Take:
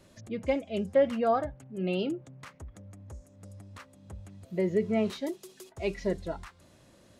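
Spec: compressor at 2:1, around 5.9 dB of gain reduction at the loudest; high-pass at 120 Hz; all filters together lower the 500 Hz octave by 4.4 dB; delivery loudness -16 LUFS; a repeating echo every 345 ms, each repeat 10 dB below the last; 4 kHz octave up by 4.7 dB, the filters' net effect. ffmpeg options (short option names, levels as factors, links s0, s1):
-af "highpass=120,equalizer=f=500:t=o:g=-5.5,equalizer=f=4000:t=o:g=6.5,acompressor=threshold=0.02:ratio=2,aecho=1:1:345|690|1035|1380:0.316|0.101|0.0324|0.0104,volume=11.9"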